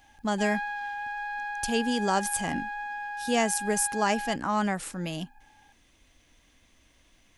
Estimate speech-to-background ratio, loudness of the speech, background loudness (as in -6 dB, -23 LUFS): 5.5 dB, -29.0 LUFS, -34.5 LUFS